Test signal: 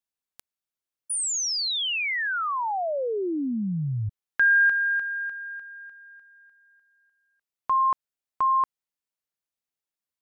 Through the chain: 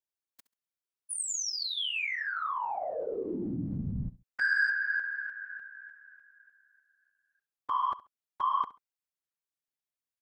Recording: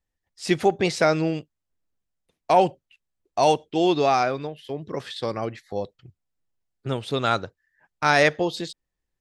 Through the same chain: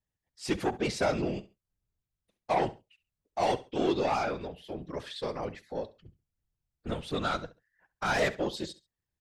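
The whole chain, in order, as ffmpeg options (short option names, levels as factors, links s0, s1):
-af "asoftclip=type=tanh:threshold=0.158,afftfilt=real='hypot(re,im)*cos(2*PI*random(0))':imag='hypot(re,im)*sin(2*PI*random(1))':win_size=512:overlap=0.75,aecho=1:1:68|136:0.133|0.0307"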